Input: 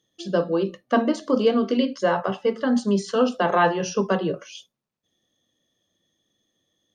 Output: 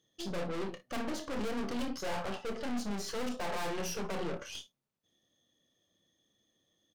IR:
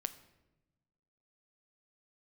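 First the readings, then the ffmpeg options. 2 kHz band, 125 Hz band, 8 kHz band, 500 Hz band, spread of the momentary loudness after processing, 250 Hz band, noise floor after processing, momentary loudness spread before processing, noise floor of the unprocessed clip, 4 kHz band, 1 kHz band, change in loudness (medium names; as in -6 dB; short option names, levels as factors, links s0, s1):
-12.5 dB, -13.0 dB, -5.0 dB, -16.5 dB, 4 LU, -15.0 dB, -79 dBFS, 5 LU, -81 dBFS, -8.5 dB, -15.0 dB, -15.0 dB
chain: -af "aeval=exprs='(tanh(63.1*val(0)+0.65)-tanh(0.65))/63.1':c=same,aecho=1:1:29|57:0.335|0.158"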